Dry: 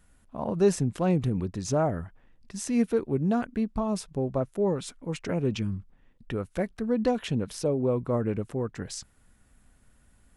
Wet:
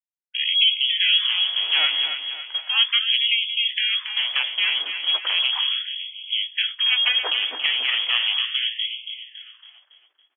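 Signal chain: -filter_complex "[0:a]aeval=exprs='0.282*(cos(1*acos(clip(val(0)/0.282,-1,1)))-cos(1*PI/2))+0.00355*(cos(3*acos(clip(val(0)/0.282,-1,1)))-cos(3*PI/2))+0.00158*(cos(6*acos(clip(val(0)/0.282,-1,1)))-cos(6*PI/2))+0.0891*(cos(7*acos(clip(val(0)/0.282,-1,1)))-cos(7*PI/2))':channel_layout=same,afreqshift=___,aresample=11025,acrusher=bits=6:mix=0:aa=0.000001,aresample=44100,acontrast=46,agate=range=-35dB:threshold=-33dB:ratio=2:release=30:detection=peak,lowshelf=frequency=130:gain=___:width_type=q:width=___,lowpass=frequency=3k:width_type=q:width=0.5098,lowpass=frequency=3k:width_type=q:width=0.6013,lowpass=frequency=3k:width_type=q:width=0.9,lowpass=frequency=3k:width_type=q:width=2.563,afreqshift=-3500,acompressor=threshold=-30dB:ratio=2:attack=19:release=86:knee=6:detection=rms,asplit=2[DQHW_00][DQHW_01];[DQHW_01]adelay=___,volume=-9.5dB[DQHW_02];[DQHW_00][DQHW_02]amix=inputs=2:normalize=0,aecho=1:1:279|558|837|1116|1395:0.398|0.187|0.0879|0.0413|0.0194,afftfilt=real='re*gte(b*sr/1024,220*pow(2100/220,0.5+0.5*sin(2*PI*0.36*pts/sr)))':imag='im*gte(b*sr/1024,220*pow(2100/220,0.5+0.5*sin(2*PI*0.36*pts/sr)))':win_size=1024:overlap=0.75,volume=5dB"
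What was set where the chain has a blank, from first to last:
23, -10.5, 3, 16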